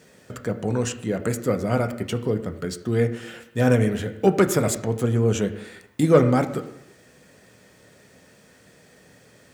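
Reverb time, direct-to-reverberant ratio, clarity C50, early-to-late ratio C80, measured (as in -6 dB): 0.85 s, 6.0 dB, 12.5 dB, 14.0 dB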